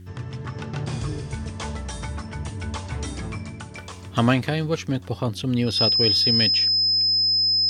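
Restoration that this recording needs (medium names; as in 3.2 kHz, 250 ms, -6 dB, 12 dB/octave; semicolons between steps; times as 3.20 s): clip repair -8.5 dBFS; de-hum 91.3 Hz, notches 4; band-stop 5.1 kHz, Q 30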